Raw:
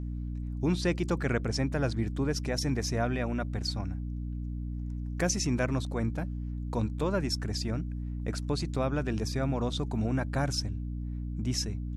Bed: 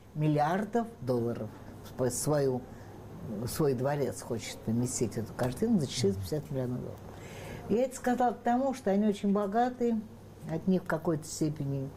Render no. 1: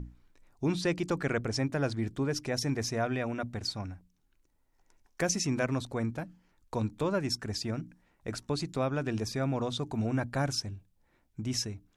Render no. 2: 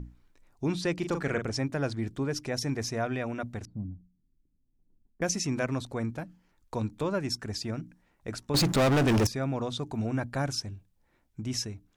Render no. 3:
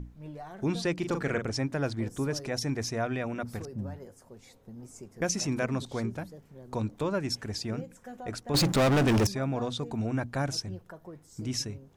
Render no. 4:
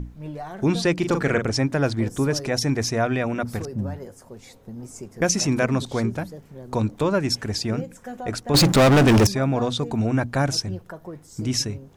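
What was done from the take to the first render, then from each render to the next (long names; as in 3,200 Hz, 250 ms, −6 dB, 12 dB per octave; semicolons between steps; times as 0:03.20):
mains-hum notches 60/120/180/240/300 Hz
0:00.96–0:01.50: double-tracking delay 40 ms −7 dB; 0:03.65–0:05.22: low-pass with resonance 220 Hz, resonance Q 1.7; 0:08.54–0:09.27: leveller curve on the samples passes 5
mix in bed −15.5 dB
level +8.5 dB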